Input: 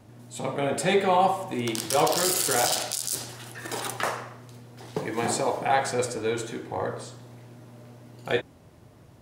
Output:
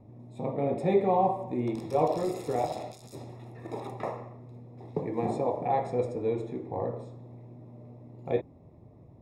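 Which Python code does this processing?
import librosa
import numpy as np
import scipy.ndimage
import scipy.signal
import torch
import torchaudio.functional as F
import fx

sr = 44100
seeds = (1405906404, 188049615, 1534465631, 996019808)

y = np.convolve(x, np.full(29, 1.0 / 29))[:len(x)]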